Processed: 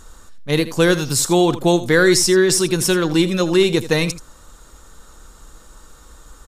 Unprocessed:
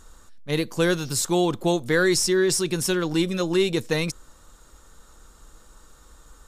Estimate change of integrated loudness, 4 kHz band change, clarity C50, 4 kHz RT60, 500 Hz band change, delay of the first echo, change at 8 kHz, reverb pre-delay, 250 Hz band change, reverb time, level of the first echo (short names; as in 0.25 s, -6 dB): +6.5 dB, +6.5 dB, none, none, +6.5 dB, 81 ms, +6.5 dB, none, +6.5 dB, none, -14.5 dB